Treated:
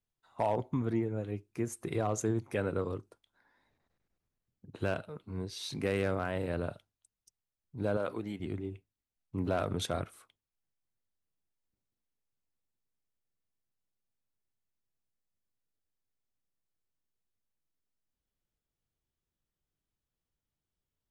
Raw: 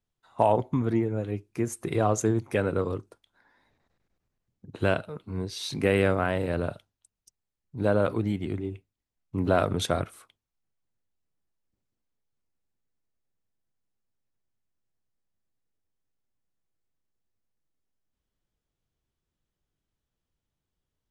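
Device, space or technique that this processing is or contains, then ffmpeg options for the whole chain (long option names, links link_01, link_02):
clipper into limiter: -filter_complex "[0:a]asoftclip=type=hard:threshold=-13dB,alimiter=limit=-15.5dB:level=0:latency=1:release=16,asettb=1/sr,asplit=3[link_01][link_02][link_03];[link_01]atrim=end=7.974[link_04];[link_02]atrim=start=7.97:end=8.4,asetpts=PTS-STARTPTS,afade=type=in:duration=0.004:curve=qsin,afade=type=out:start_time=0.426:duration=0.004:curve=qsin,highpass=frequency=330:poles=1[link_05];[link_03]atrim=start=8.396[link_06];[link_04][link_05]acrossfade=duration=0.004:curve1=hsin:curve2=qsin[link_07];[link_07][link_06]acrossfade=duration=0.004:curve1=qsin:curve2=hsin,volume=-6dB"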